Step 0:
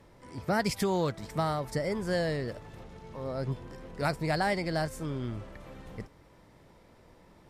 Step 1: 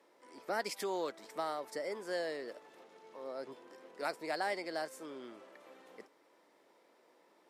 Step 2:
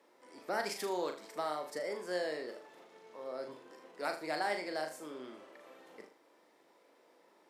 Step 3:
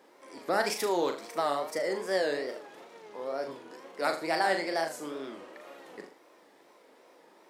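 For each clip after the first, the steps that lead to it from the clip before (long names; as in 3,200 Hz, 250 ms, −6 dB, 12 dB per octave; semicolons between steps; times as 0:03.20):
high-pass filter 310 Hz 24 dB per octave; level −6.5 dB
flutter between parallel walls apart 6.7 metres, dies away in 0.37 s
tape wow and flutter 110 cents; level +7.5 dB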